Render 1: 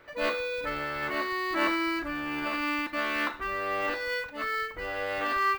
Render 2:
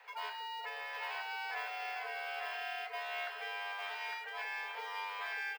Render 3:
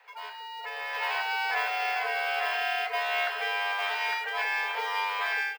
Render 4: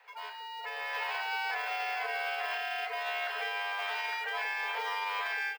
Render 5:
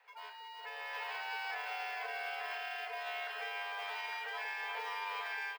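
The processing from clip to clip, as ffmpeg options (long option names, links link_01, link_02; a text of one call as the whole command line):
ffmpeg -i in.wav -filter_complex "[0:a]afreqshift=410,acrossover=split=400|4600[link_01][link_02][link_03];[link_01]acompressor=threshold=-57dB:ratio=4[link_04];[link_02]acompressor=threshold=-38dB:ratio=4[link_05];[link_03]acompressor=threshold=-56dB:ratio=4[link_06];[link_04][link_05][link_06]amix=inputs=3:normalize=0,aecho=1:1:855:0.668,volume=-3.5dB" out.wav
ffmpeg -i in.wav -af "dynaudnorm=framelen=540:gausssize=3:maxgain=11.5dB" out.wav
ffmpeg -i in.wav -af "alimiter=limit=-23.5dB:level=0:latency=1:release=43,volume=-2dB" out.wav
ffmpeg -i in.wav -af "aecho=1:1:359:0.335,volume=-6.5dB" out.wav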